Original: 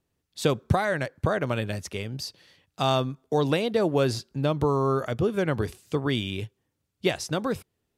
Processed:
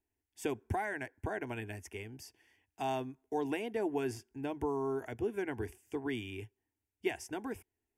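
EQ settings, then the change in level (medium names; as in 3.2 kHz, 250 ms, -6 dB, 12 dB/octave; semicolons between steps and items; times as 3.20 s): static phaser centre 820 Hz, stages 8; -7.5 dB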